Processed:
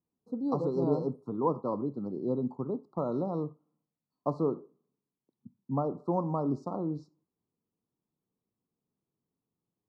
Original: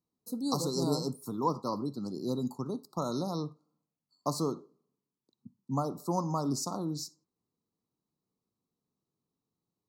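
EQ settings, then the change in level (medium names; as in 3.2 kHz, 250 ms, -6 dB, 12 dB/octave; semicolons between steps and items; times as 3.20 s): low-pass 1.1 kHz 12 dB/octave; dynamic bell 480 Hz, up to +5 dB, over -46 dBFS, Q 1.5; 0.0 dB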